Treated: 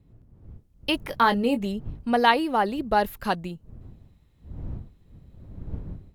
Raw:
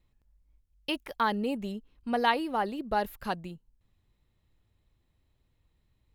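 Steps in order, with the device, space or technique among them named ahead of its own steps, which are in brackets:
0:01.03–0:01.66: double-tracking delay 21 ms −8 dB
smartphone video outdoors (wind on the microphone 110 Hz −48 dBFS; automatic gain control gain up to 7 dB; AAC 128 kbit/s 48,000 Hz)

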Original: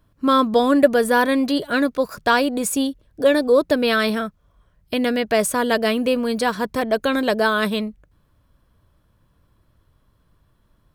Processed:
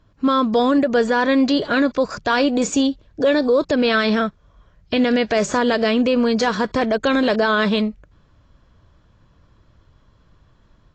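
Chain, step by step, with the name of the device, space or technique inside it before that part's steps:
low-bitrate web radio (automatic gain control gain up to 3 dB; brickwall limiter −12.5 dBFS, peak gain reduction 10.5 dB; level +3.5 dB; AAC 32 kbit/s 16,000 Hz)

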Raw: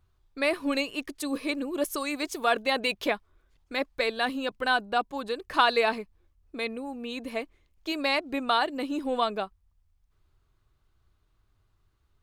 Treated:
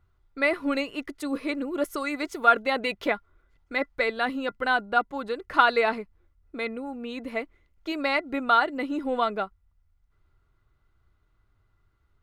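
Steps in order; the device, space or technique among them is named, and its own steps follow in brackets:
inside a helmet (high-shelf EQ 3,100 Hz −9.5 dB; hollow resonant body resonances 1,400/2,000 Hz, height 14 dB, ringing for 60 ms)
level +1.5 dB

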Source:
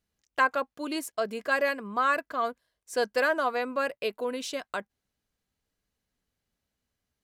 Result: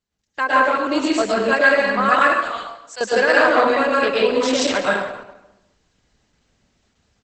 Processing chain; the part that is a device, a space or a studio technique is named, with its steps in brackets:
0:02.19–0:03.01: guitar amp tone stack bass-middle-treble 10-0-10
speakerphone in a meeting room (convolution reverb RT60 0.90 s, pre-delay 104 ms, DRR −5.5 dB; far-end echo of a speakerphone 180 ms, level −26 dB; automatic gain control gain up to 15 dB; level −1 dB; Opus 12 kbit/s 48,000 Hz)

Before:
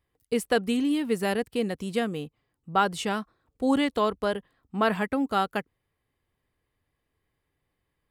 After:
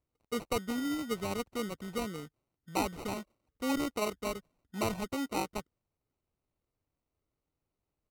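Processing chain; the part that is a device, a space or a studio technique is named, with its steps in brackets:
crushed at another speed (tape speed factor 1.25×; decimation without filtering 21×; tape speed factor 0.8×)
level −8.5 dB

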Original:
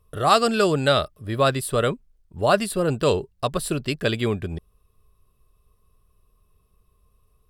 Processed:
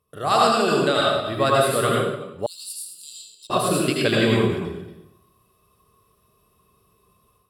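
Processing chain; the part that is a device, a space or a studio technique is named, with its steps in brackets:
delay that plays each chunk backwards 134 ms, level −11.5 dB
far laptop microphone (convolution reverb RT60 0.75 s, pre-delay 75 ms, DRR −3.5 dB; high-pass filter 140 Hz 12 dB per octave; automatic gain control gain up to 8 dB)
0:02.46–0:03.50: inverse Chebyshev high-pass filter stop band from 1,900 Hz, stop band 50 dB
level −4.5 dB

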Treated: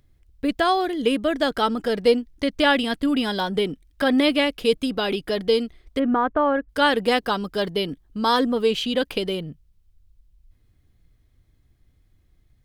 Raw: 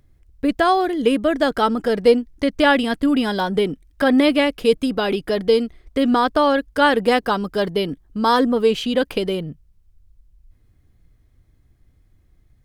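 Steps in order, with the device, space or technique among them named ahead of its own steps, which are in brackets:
0:05.99–0:06.69: low-pass filter 1,900 Hz 24 dB per octave
presence and air boost (parametric band 3,500 Hz +5 dB 1.2 octaves; high-shelf EQ 9,400 Hz +3.5 dB)
level −4 dB

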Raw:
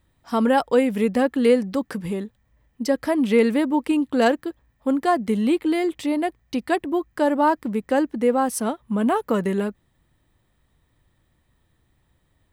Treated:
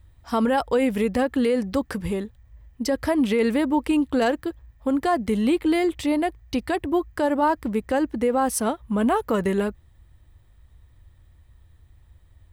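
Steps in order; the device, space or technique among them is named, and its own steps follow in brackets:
car stereo with a boomy subwoofer (low shelf with overshoot 120 Hz +11.5 dB, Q 1.5; brickwall limiter −15 dBFS, peak gain reduction 8 dB)
level +2 dB

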